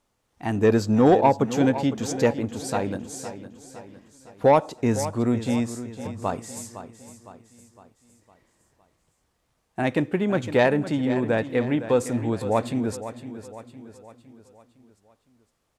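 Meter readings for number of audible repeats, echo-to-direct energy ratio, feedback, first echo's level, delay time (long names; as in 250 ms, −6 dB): 4, −11.5 dB, 49%, −12.5 dB, 509 ms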